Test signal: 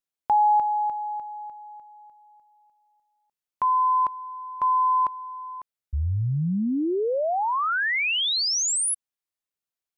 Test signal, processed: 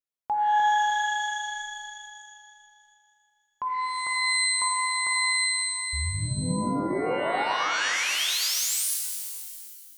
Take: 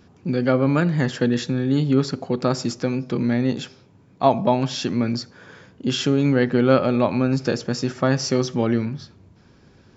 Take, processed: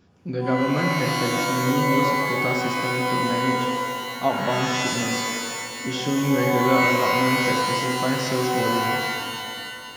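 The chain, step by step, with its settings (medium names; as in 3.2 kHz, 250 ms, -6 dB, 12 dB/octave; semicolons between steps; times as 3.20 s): pitch-shifted reverb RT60 2.2 s, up +12 st, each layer -2 dB, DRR 1 dB; trim -7 dB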